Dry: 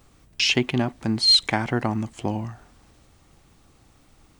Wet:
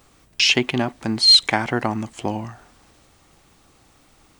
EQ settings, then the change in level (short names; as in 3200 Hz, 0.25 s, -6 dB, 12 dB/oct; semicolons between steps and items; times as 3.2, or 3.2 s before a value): low shelf 240 Hz -8 dB; +4.5 dB